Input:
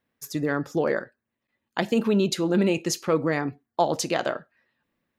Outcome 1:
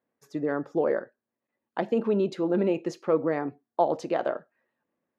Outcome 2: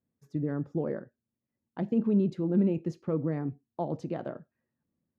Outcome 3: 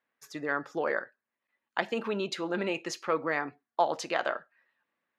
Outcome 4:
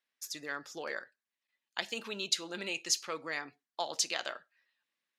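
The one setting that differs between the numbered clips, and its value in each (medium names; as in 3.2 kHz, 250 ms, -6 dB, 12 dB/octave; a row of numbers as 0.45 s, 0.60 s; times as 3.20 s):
band-pass filter, frequency: 530 Hz, 130 Hz, 1.4 kHz, 4.8 kHz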